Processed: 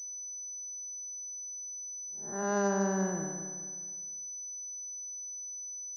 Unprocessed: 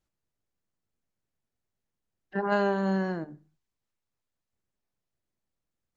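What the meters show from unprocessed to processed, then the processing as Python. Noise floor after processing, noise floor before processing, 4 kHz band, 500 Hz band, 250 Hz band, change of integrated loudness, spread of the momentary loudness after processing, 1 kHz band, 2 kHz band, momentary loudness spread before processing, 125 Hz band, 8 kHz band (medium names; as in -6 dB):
-42 dBFS, under -85 dBFS, -7.5 dB, -3.0 dB, -3.0 dB, -7.0 dB, 9 LU, -4.0 dB, -5.5 dB, 11 LU, -3.0 dB, no reading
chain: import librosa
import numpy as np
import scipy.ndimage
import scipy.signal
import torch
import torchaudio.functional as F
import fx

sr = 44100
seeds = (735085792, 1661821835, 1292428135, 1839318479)

y = fx.spec_blur(x, sr, span_ms=242.0)
y = fx.env_lowpass(y, sr, base_hz=690.0, full_db=-28.0)
y = fx.echo_feedback(y, sr, ms=213, feedback_pct=41, wet_db=-8)
y = fx.pwm(y, sr, carrier_hz=6000.0)
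y = y * 10.0 ** (-3.0 / 20.0)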